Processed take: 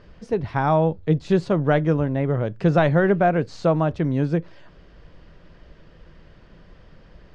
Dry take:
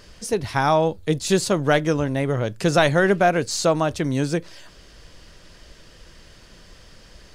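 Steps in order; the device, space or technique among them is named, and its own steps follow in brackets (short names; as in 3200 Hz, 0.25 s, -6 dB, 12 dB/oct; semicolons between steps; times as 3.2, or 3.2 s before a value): phone in a pocket (LPF 3500 Hz 12 dB/oct; bell 160 Hz +5.5 dB 0.3 oct; high shelf 2100 Hz -11.5 dB)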